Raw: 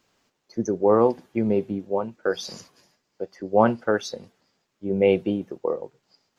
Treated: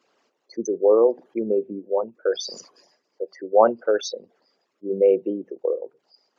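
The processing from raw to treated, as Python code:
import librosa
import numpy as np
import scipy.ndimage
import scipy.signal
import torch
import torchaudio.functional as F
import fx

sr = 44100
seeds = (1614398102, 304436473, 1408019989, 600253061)

y = fx.envelope_sharpen(x, sr, power=2.0)
y = scipy.signal.sosfilt(scipy.signal.butter(2, 380.0, 'highpass', fs=sr, output='sos'), y)
y = y * librosa.db_to_amplitude(3.5)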